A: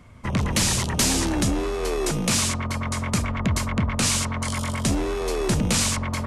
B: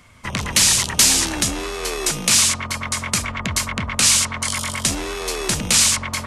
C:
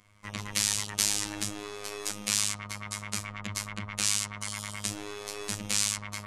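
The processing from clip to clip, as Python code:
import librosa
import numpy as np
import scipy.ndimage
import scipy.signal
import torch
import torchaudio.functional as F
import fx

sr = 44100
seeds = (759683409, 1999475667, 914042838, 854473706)

y1 = fx.tilt_shelf(x, sr, db=-7.0, hz=1100.0)
y1 = F.gain(torch.from_numpy(y1), 2.5).numpy()
y2 = fx.robotise(y1, sr, hz=103.0)
y2 = F.gain(torch.from_numpy(y2), -11.0).numpy()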